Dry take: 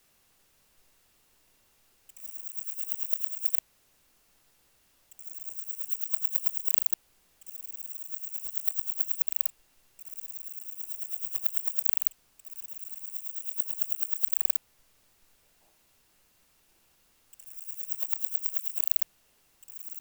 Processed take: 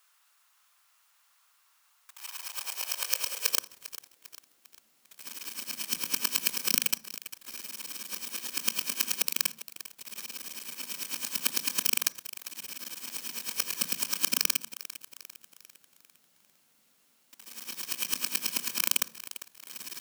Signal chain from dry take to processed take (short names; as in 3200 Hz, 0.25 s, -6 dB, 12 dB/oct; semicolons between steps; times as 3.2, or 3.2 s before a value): FFT order left unsorted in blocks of 128 samples; on a send at -22.5 dB: bell 99 Hz +13.5 dB 1.5 oct + reverb RT60 0.45 s, pre-delay 21 ms; on the sum: high-pass sweep 1100 Hz -> 220 Hz, 1.85–4.94; lo-fi delay 0.399 s, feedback 55%, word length 6-bit, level -14.5 dB; gain -1 dB